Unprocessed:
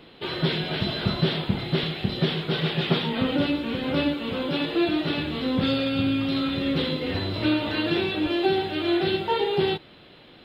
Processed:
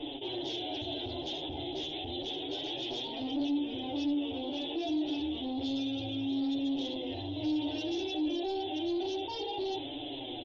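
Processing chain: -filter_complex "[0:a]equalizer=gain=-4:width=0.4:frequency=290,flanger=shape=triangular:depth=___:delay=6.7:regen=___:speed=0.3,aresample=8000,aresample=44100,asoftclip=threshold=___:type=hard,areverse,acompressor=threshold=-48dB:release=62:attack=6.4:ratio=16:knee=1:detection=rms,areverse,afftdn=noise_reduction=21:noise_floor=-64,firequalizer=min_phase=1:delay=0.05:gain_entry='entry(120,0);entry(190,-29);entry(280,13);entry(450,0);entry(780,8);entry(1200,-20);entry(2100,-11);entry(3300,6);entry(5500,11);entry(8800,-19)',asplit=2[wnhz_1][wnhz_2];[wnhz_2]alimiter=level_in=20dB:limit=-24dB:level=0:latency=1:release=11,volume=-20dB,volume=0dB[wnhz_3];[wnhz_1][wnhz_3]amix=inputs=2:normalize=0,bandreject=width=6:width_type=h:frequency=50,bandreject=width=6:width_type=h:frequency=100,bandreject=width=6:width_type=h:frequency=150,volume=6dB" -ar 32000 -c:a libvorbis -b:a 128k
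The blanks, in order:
7, -4, -30.5dB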